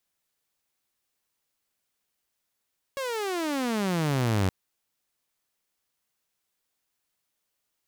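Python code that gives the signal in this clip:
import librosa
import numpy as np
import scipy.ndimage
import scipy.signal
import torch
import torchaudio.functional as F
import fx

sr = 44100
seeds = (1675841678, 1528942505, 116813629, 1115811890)

y = fx.riser_tone(sr, length_s=1.52, level_db=-19.0, wave='saw', hz=559.0, rise_st=-31.5, swell_db=7.5)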